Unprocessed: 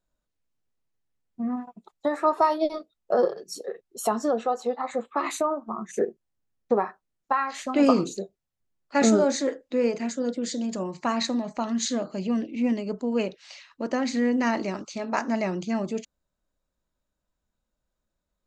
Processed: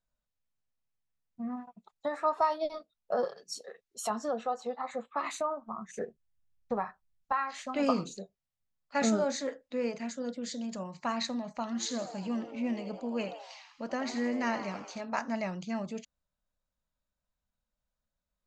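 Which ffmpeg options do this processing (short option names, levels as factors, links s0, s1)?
-filter_complex "[0:a]asettb=1/sr,asplit=3[s0][s1][s2];[s0]atrim=end=3.244[s3];[s1]atrim=start=3.24:end=4.1,asetpts=PTS-STARTPTS,afade=t=in:d=0.004:c=qsin,afade=t=out:st=0.856:d=0.004:c=qsin,tiltshelf=f=1200:g=-5[s4];[s2]atrim=start=4.096[s5];[s3][s4]acrossfade=d=0.004:c1=hsin:c2=qsin[s6];[s6][s5]acrossfade=d=0.004:c1=qsin:c2=hsin,asettb=1/sr,asplit=3[s7][s8][s9];[s7]atrim=end=5.354[s10];[s8]atrim=start=5.35:end=7.32,asetpts=PTS-STARTPTS,afade=t=in:d=0.004:c=qsin,afade=t=out:st=1.966:d=0.004:c=qsin,asubboost=boost=8:cutoff=140[s11];[s9]atrim=start=7.316[s12];[s10][s11]acrossfade=d=0.004:c1=hsin:c2=qsin[s13];[s13][s12]acrossfade=d=0.004:c1=qsin:c2=hsin,asettb=1/sr,asplit=3[s14][s15][s16];[s14]atrim=end=11.644[s17];[s15]atrim=start=11.64:end=15.01,asetpts=PTS-STARTPTS,afade=t=in:d=0.004:c=qsin,afade=t=out:st=3.366:d=0.004:c=qsin,asplit=7[s18][s19][s20][s21][s22][s23][s24];[s19]adelay=81,afreqshift=110,volume=0.282[s25];[s20]adelay=162,afreqshift=220,volume=0.158[s26];[s21]adelay=243,afreqshift=330,volume=0.0881[s27];[s22]adelay=324,afreqshift=440,volume=0.0495[s28];[s23]adelay=405,afreqshift=550,volume=0.0279[s29];[s24]adelay=486,afreqshift=660,volume=0.0155[s30];[s18][s25][s26][s27][s28][s29][s30]amix=inputs=7:normalize=0,atrim=end_sample=148617[s31];[s16]atrim=start=15.006[s32];[s17][s31]acrossfade=d=0.004:c1=hsin:c2=qsin[s33];[s33][s32]acrossfade=d=0.004:c1=qsin:c2=hsin,lowpass=7600,equalizer=f=350:w=2.5:g=-12,volume=0.531"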